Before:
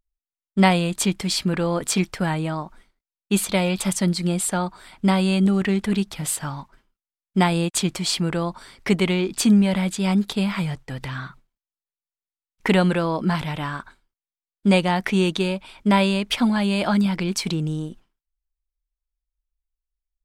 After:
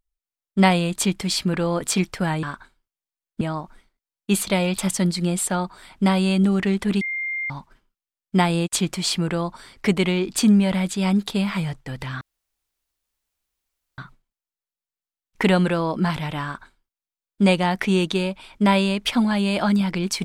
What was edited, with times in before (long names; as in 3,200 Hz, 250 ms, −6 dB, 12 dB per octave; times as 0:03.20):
0:06.03–0:06.52: beep over 2,110 Hz −24 dBFS
0:11.23: splice in room tone 1.77 s
0:13.69–0:14.67: duplicate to 0:02.43